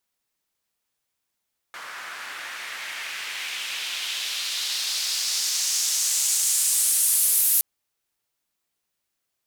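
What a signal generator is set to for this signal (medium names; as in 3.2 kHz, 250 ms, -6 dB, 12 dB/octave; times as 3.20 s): swept filtered noise white, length 5.87 s bandpass, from 1.3 kHz, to 12 kHz, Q 1.8, exponential, gain ramp +12 dB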